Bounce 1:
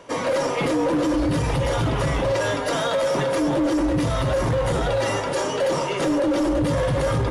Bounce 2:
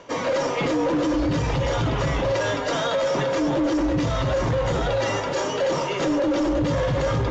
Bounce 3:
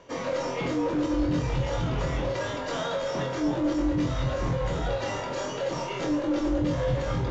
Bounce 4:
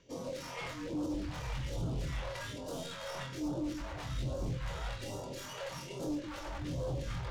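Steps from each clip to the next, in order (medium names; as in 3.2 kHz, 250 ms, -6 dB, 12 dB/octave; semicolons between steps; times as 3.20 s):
elliptic low-pass 7 kHz, stop band 40 dB; reverse; upward compressor, threshold -26 dBFS; reverse
bass shelf 160 Hz +6.5 dB; on a send: flutter echo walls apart 4 m, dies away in 0.29 s; on the sum: trim -8.5 dB
tracing distortion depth 0.074 ms; wavefolder -23 dBFS; phase shifter stages 2, 1.2 Hz, lowest notch 250–1900 Hz; trim -7 dB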